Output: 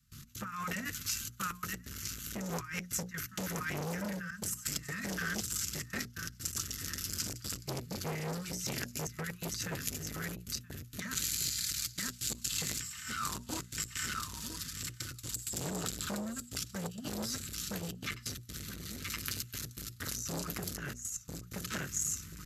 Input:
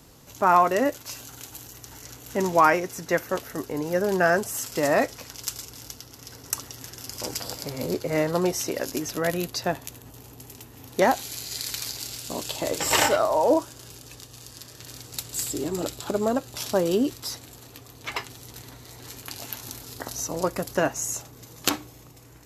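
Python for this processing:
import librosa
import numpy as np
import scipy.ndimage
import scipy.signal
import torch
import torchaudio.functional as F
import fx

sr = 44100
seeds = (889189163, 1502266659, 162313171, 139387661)

p1 = fx.dynamic_eq(x, sr, hz=7300.0, q=2.3, threshold_db=-44.0, ratio=4.0, max_db=5)
p2 = p1 + fx.echo_feedback(p1, sr, ms=974, feedback_pct=25, wet_db=-9.5, dry=0)
p3 = fx.step_gate(p2, sr, bpm=129, pattern='.x.xxxxxxxx.x', floor_db=-24.0, edge_ms=4.5)
p4 = scipy.signal.sosfilt(scipy.signal.ellip(3, 1.0, 40, [240.0, 1300.0], 'bandstop', fs=sr, output='sos'), p3)
p5 = fx.over_compress(p4, sr, threshold_db=-35.0, ratio=-1.0)
p6 = fx.low_shelf(p5, sr, hz=130.0, db=7.0)
p7 = fx.hum_notches(p6, sr, base_hz=60, count=4)
p8 = fx.notch_comb(p7, sr, f0_hz=280.0)
p9 = fx.transformer_sat(p8, sr, knee_hz=3200.0)
y = p9 * 10.0 ** (1.5 / 20.0)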